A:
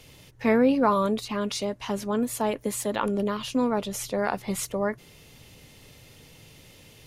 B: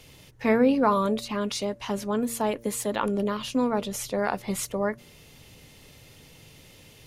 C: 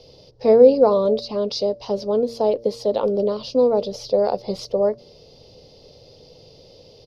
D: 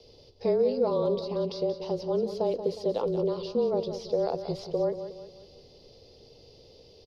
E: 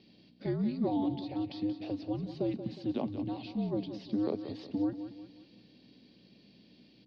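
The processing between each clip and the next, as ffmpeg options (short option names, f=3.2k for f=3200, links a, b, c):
-af "bandreject=f=116:t=h:w=4,bandreject=f=232:t=h:w=4,bandreject=f=348:t=h:w=4,bandreject=f=464:t=h:w=4,bandreject=f=580:t=h:w=4"
-af "firequalizer=gain_entry='entry(280,0);entry(490,14);entry(950,-2);entry(1700,-16);entry(4900,11);entry(7400,-21)':delay=0.05:min_phase=1"
-filter_complex "[0:a]afreqshift=-29,acrossover=split=2600|5700[a][b][c];[a]acompressor=threshold=-16dB:ratio=4[d];[b]acompressor=threshold=-40dB:ratio=4[e];[c]acompressor=threshold=-53dB:ratio=4[f];[d][e][f]amix=inputs=3:normalize=0,aecho=1:1:181|362|543|724|905:0.299|0.128|0.0552|0.0237|0.0102,volume=-6.5dB"
-af "afreqshift=-270,aeval=exprs='val(0)+0.00251*(sin(2*PI*60*n/s)+sin(2*PI*2*60*n/s)/2+sin(2*PI*3*60*n/s)/3+sin(2*PI*4*60*n/s)/4+sin(2*PI*5*60*n/s)/5)':c=same,highpass=280,lowpass=2.9k"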